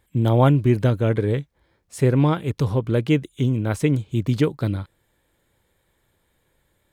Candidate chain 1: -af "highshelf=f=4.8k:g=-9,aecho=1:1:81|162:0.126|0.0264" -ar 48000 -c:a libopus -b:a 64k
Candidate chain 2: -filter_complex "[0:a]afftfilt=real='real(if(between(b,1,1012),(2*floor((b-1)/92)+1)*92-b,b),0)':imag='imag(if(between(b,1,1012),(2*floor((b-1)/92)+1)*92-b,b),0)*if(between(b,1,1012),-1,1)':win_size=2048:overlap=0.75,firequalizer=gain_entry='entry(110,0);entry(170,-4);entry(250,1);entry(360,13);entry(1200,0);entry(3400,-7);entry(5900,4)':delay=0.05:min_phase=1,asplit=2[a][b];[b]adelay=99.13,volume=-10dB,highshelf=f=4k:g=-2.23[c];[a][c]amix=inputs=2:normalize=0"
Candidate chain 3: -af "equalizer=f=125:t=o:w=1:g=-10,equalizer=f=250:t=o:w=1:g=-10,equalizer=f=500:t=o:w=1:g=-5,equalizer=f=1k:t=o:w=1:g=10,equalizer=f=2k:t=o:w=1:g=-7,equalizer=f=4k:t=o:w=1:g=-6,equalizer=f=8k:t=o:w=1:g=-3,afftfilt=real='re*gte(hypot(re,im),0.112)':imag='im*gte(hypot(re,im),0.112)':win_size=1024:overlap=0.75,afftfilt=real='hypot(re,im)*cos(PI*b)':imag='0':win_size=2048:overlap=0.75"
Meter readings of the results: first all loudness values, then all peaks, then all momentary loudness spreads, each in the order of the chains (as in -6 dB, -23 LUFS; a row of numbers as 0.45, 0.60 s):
-21.0, -19.0, -33.0 LUFS; -5.0, -3.5, -6.5 dBFS; 9, 10, 15 LU